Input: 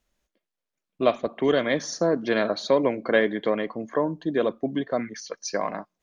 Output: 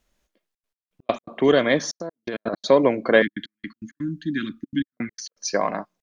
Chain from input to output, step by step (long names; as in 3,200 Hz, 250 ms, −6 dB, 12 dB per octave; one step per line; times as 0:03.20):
0:02.00–0:02.59: compressor whose output falls as the input rises −31 dBFS, ratio −1
gate pattern "xxxxxx.x..x.x.x" 165 BPM −60 dB
0:03.22–0:04.97: elliptic band-stop filter 290–1,500 Hz, stop band 40 dB
level +4.5 dB